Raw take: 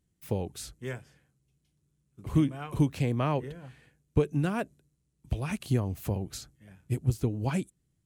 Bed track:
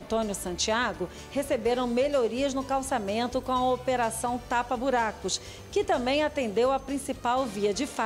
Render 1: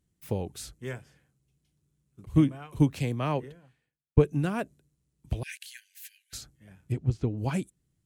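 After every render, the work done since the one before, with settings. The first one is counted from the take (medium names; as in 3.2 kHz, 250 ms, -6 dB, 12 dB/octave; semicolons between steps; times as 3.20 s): 2.25–4.25 s: three bands expanded up and down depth 100%; 5.43–6.33 s: brick-wall FIR high-pass 1.5 kHz; 6.92–7.38 s: distance through air 120 m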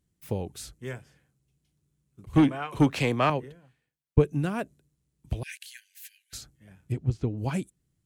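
2.33–3.30 s: overdrive pedal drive 20 dB, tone 2.5 kHz, clips at -10 dBFS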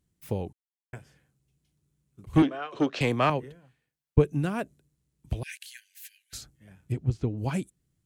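0.53–0.93 s: mute; 2.42–3.01 s: cabinet simulation 330–5800 Hz, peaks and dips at 380 Hz +3 dB, 620 Hz +3 dB, 900 Hz -8 dB, 2.2 kHz -7 dB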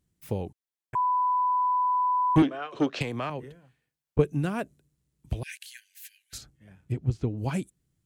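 0.95–2.36 s: bleep 997 Hz -21.5 dBFS; 3.02–4.19 s: compression, threshold -28 dBFS; 6.38–7.03 s: treble shelf 6.4 kHz -7.5 dB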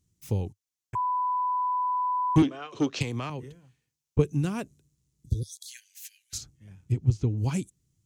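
5.18–5.66 s: spectral replace 520–3300 Hz before; fifteen-band graphic EQ 100 Hz +7 dB, 630 Hz -7 dB, 1.6 kHz -6 dB, 6.3 kHz +9 dB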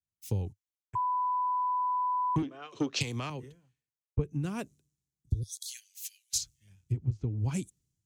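compression 16:1, threshold -27 dBFS, peak gain reduction 13.5 dB; three bands expanded up and down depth 70%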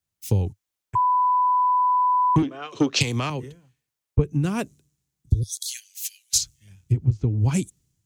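trim +10 dB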